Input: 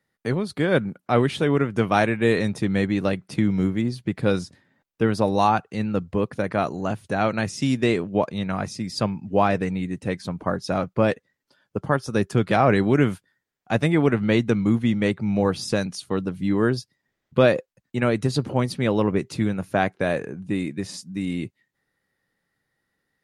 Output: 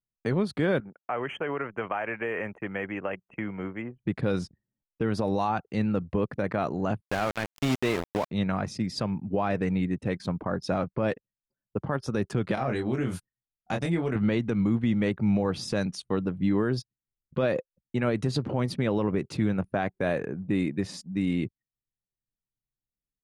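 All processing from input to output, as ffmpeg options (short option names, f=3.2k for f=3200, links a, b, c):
-filter_complex "[0:a]asettb=1/sr,asplit=3[a][b][c];[a]atrim=end=0.804[d];[b]atrim=start=0.8:end=4.04,asetpts=PTS-STARTPTS,afade=t=in:d=0.004:c=qsin,afade=t=out:st=3.236:d=0.004:c=qsin,acrossover=split=490 3400:gain=0.158 1 0.158[e][f][g];[e][f][g]amix=inputs=3:normalize=0,acompressor=threshold=-25dB:ratio=10:attack=3.2:release=140:knee=1:detection=peak,asuperstop=centerf=4400:order=20:qfactor=1.6[h];[c]atrim=start=4.036[i];[d][h]acrossfade=d=0.004:c1=hsin:c2=qsin[j];[j][i]acrossfade=d=0.004:c1=qsin:c2=hsin,asettb=1/sr,asplit=3[k][l][m];[k]atrim=end=7.014[n];[l]atrim=start=7.01:end=8.31,asetpts=PTS-STARTPTS,afade=t=in:d=0.004:c=qsin,afade=t=out:st=1.296:d=0.004:c=qsin,lowshelf=f=240:g=-7,aeval=exprs='val(0)*gte(abs(val(0)),0.0596)':c=same[o];[m]atrim=start=8.306[p];[n][o]acrossfade=d=0.004:c1=hsin:c2=qsin[q];[q][p]acrossfade=d=0.004:c1=qsin:c2=hsin,asettb=1/sr,asplit=3[r][s][t];[r]atrim=end=12.554[u];[s]atrim=start=12.55:end=14.16,asetpts=PTS-STARTPTS,afade=t=in:d=0.004:c=qsin,afade=t=out:st=1.606:d=0.004:c=qsin,bass=f=250:g=2,treble=f=4k:g=11,acompressor=threshold=-27dB:ratio=4:attack=3.2:release=140:knee=1:detection=peak,asplit=2[v][w];[w]adelay=23,volume=-3.5dB[x];[v][x]amix=inputs=2:normalize=0,atrim=end_sample=71001[y];[t]atrim=start=14.156[z];[u][y]acrossfade=d=0.004:c1=hsin:c2=qsin[aa];[aa][z]acrossfade=d=0.004:c1=qsin:c2=hsin,anlmdn=0.1,aemphasis=mode=reproduction:type=cd,alimiter=limit=-16dB:level=0:latency=1:release=89"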